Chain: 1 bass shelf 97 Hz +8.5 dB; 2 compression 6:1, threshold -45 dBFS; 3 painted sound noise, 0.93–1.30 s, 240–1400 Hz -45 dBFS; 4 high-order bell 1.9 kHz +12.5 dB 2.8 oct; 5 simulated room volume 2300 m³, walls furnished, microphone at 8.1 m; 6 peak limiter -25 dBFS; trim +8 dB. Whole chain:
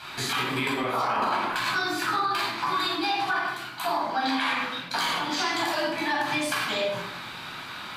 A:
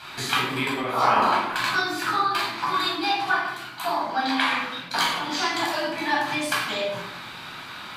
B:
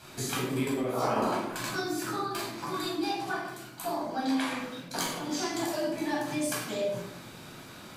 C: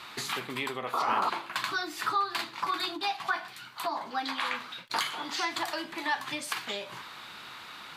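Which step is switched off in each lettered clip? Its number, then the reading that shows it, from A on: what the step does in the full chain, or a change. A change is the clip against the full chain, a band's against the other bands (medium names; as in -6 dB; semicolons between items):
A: 6, crest factor change +8.0 dB; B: 4, 2 kHz band -10.5 dB; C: 5, momentary loudness spread change +7 LU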